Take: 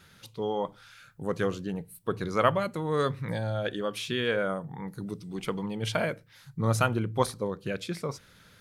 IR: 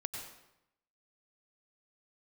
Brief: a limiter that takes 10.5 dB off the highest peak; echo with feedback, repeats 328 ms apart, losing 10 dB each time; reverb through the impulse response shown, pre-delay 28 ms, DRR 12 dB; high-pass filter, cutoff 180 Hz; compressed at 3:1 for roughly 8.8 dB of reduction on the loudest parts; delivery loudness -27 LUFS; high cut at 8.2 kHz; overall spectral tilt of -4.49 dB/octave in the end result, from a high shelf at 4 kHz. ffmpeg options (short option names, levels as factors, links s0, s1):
-filter_complex "[0:a]highpass=180,lowpass=8200,highshelf=f=4000:g=-6,acompressor=threshold=0.0316:ratio=3,alimiter=level_in=1.12:limit=0.0631:level=0:latency=1,volume=0.891,aecho=1:1:328|656|984|1312:0.316|0.101|0.0324|0.0104,asplit=2[s0][s1];[1:a]atrim=start_sample=2205,adelay=28[s2];[s1][s2]afir=irnorm=-1:irlink=0,volume=0.237[s3];[s0][s3]amix=inputs=2:normalize=0,volume=3.35"